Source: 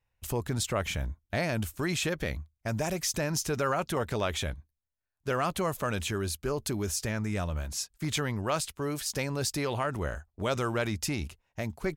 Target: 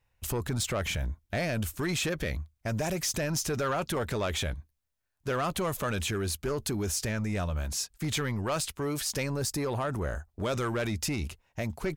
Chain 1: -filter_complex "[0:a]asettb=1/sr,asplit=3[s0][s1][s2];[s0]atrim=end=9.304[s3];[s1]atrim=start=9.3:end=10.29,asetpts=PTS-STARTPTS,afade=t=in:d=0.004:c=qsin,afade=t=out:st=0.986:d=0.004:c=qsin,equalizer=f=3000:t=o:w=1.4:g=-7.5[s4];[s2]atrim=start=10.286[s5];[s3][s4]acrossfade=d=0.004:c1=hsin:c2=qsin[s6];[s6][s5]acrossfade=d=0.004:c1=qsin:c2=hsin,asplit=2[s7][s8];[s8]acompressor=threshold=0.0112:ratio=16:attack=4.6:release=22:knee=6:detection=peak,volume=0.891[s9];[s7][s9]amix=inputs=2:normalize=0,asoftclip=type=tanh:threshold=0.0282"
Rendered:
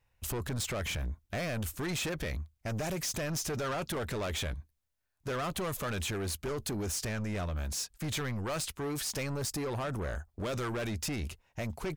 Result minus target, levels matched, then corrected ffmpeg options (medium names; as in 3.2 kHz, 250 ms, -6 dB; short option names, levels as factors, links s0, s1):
saturation: distortion +7 dB
-filter_complex "[0:a]asettb=1/sr,asplit=3[s0][s1][s2];[s0]atrim=end=9.304[s3];[s1]atrim=start=9.3:end=10.29,asetpts=PTS-STARTPTS,afade=t=in:d=0.004:c=qsin,afade=t=out:st=0.986:d=0.004:c=qsin,equalizer=f=3000:t=o:w=1.4:g=-7.5[s4];[s2]atrim=start=10.286[s5];[s3][s4]acrossfade=d=0.004:c1=hsin:c2=qsin[s6];[s6][s5]acrossfade=d=0.004:c1=qsin:c2=hsin,asplit=2[s7][s8];[s8]acompressor=threshold=0.0112:ratio=16:attack=4.6:release=22:knee=6:detection=peak,volume=0.891[s9];[s7][s9]amix=inputs=2:normalize=0,asoftclip=type=tanh:threshold=0.0708"